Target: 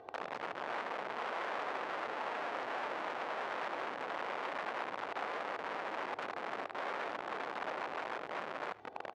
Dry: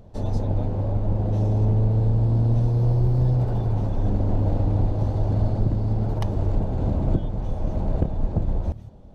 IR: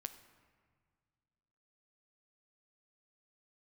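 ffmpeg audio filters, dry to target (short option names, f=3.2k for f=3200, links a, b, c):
-filter_complex "[0:a]asplit=3[a][b][c];[a]afade=t=out:st=4.72:d=0.02[d];[b]agate=range=-16dB:threshold=-21dB:ratio=16:detection=peak,afade=t=in:st=4.72:d=0.02,afade=t=out:st=6.76:d=0.02[e];[c]afade=t=in:st=6.76:d=0.02[f];[d][e][f]amix=inputs=3:normalize=0,aecho=1:1:2.6:0.89,acompressor=threshold=-31dB:ratio=8,alimiter=level_in=7.5dB:limit=-24dB:level=0:latency=1:release=116,volume=-7.5dB,dynaudnorm=f=310:g=5:m=6.5dB,aeval=exprs='(mod(50.1*val(0)+1,2)-1)/50.1':c=same,highpass=640,lowpass=2k,aecho=1:1:76:0.126,volume=5dB"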